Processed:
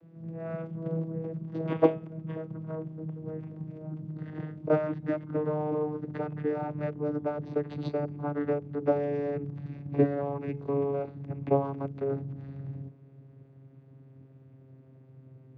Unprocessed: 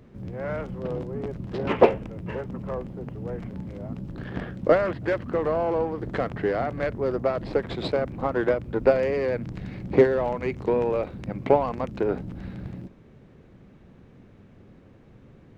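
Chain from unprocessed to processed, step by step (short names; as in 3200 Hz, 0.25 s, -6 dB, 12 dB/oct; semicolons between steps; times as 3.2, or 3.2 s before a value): vocoder on a gliding note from E3, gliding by -4 st; de-hum 426.4 Hz, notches 33; gain -4.5 dB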